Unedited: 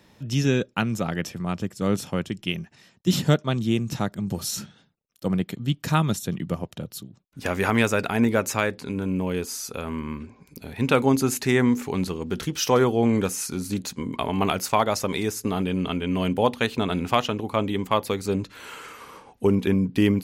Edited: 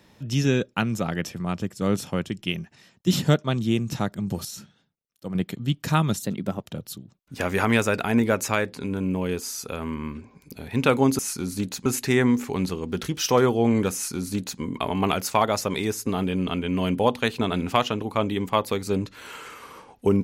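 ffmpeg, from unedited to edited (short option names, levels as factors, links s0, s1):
-filter_complex "[0:a]asplit=7[s0][s1][s2][s3][s4][s5][s6];[s0]atrim=end=4.452[s7];[s1]atrim=start=4.448:end=5.352,asetpts=PTS-STARTPTS,volume=0.398[s8];[s2]atrim=start=5.348:end=6.224[s9];[s3]atrim=start=6.22:end=6.68,asetpts=PTS-STARTPTS,asetrate=49833,aresample=44100,atrim=end_sample=17952,asetpts=PTS-STARTPTS[s10];[s4]atrim=start=6.676:end=11.242[s11];[s5]atrim=start=13.318:end=13.992[s12];[s6]atrim=start=11.238[s13];[s7][s8]acrossfade=d=0.004:c1=hsin:c2=hsin[s14];[s14][s9]acrossfade=d=0.004:c1=hsin:c2=hsin[s15];[s15][s10]acrossfade=d=0.004:c1=hsin:c2=hsin[s16];[s16][s11]acrossfade=d=0.004:c1=hsin:c2=hsin[s17];[s17][s12]acrossfade=d=0.004:c1=hsin:c2=hsin[s18];[s18][s13]acrossfade=d=0.004:c1=hsin:c2=hsin"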